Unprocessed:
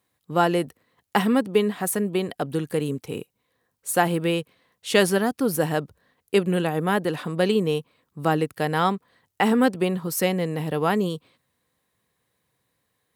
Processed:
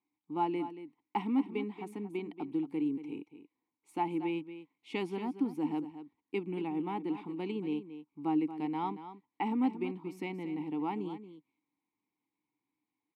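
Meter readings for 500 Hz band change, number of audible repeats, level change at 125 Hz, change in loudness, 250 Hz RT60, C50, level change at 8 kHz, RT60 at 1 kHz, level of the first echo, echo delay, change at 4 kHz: -16.5 dB, 1, -18.0 dB, -12.0 dB, none, none, under -30 dB, none, -12.0 dB, 0.23 s, -20.0 dB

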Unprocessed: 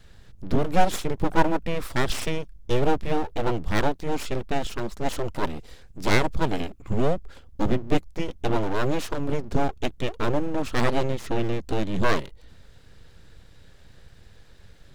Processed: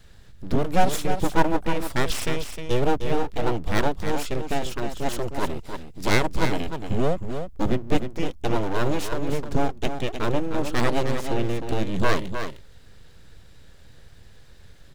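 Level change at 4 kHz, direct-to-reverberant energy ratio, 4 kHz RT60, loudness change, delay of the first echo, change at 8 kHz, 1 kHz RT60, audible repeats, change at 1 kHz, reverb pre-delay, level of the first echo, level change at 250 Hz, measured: +1.5 dB, none, none, +0.5 dB, 0.308 s, +3.0 dB, none, 1, +0.5 dB, none, -8.0 dB, +0.5 dB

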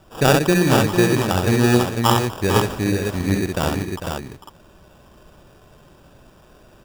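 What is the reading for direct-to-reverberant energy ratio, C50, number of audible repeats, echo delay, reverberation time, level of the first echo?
none, none, 4, 66 ms, none, -4.0 dB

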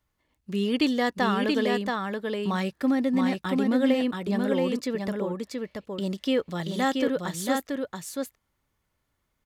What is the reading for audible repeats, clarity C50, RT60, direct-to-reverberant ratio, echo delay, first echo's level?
1, none, none, none, 0.679 s, -3.5 dB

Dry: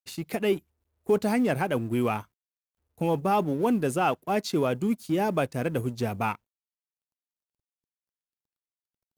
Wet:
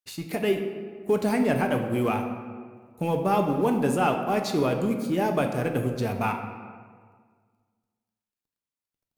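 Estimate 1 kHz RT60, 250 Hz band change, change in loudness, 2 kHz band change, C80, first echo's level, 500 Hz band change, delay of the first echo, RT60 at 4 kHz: 1.7 s, +1.5 dB, +1.0 dB, +1.5 dB, 8.0 dB, none, +1.5 dB, none, 1.0 s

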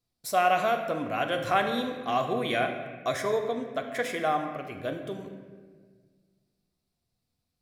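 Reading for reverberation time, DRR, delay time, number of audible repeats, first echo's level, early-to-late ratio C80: 1.6 s, 4.0 dB, none, none, none, 8.0 dB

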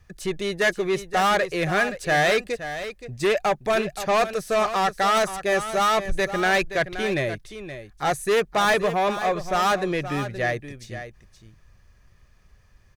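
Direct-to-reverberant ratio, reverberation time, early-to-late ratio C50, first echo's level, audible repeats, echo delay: none, none, none, -11.5 dB, 1, 0.523 s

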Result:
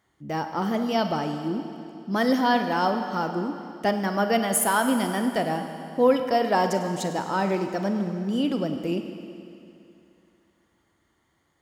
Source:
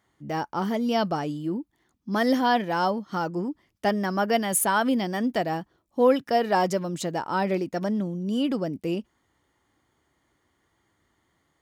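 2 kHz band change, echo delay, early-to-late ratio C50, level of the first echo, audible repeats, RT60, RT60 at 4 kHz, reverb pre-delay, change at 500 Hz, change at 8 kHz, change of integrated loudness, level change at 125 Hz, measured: +1.0 dB, none, 7.0 dB, none, none, 2.7 s, 2.6 s, 31 ms, +0.5 dB, +1.0 dB, +1.0 dB, +0.5 dB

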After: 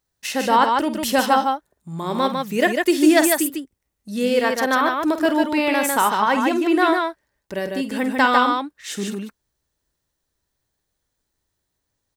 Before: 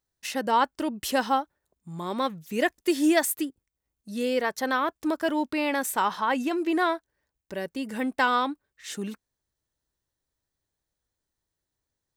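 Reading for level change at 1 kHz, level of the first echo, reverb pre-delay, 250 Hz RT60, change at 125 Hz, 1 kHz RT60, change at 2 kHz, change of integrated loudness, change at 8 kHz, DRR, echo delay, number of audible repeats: +7.5 dB, -11.0 dB, none, none, +8.0 dB, none, +7.5 dB, +7.5 dB, +8.0 dB, none, 49 ms, 2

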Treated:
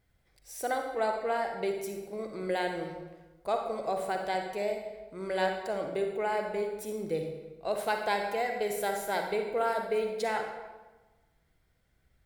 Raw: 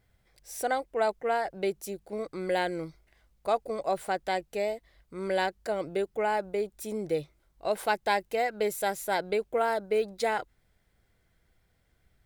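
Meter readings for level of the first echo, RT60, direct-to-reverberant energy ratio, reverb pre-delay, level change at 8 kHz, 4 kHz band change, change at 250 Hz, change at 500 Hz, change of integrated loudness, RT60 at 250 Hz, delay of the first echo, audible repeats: none, 1.2 s, 3.0 dB, 39 ms, -2.5 dB, -2.0 dB, -1.5 dB, -1.5 dB, -2.0 dB, 1.4 s, none, none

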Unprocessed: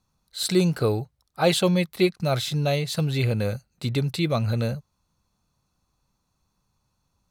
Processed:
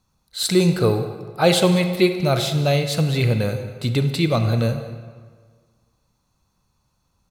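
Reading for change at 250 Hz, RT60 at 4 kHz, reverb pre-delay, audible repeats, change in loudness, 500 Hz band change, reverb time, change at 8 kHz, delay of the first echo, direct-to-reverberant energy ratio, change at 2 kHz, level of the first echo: +4.5 dB, 1.1 s, 33 ms, 1, +4.5 dB, +4.5 dB, 1.7 s, +4.5 dB, 0.19 s, 7.5 dB, +4.5 dB, -19.0 dB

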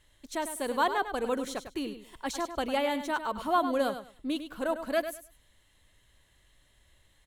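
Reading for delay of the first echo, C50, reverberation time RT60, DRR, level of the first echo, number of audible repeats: 0.101 s, none, none, none, -10.0 dB, 2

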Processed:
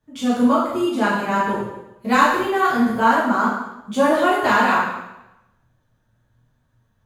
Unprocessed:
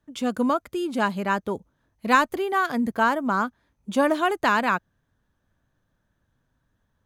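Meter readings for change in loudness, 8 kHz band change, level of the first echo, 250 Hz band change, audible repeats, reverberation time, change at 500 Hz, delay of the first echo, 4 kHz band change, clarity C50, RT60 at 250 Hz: +5.0 dB, +5.0 dB, none, +6.0 dB, none, 0.90 s, +5.5 dB, none, +4.5 dB, 1.0 dB, 0.95 s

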